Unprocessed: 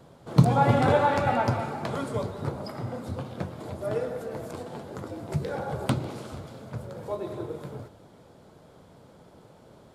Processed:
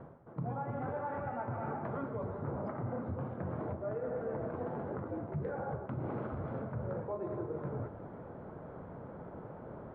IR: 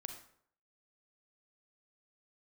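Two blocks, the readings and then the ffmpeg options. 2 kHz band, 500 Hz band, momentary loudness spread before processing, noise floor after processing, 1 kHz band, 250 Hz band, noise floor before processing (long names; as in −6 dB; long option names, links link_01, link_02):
−13.5 dB, −8.5 dB, 18 LU, −49 dBFS, −12.5 dB, −9.5 dB, −54 dBFS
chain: -af "lowpass=frequency=1700:width=0.5412,lowpass=frequency=1700:width=1.3066,areverse,acompressor=threshold=-37dB:ratio=8,areverse,alimiter=level_in=11dB:limit=-24dB:level=0:latency=1:release=193,volume=-11dB,volume=6dB"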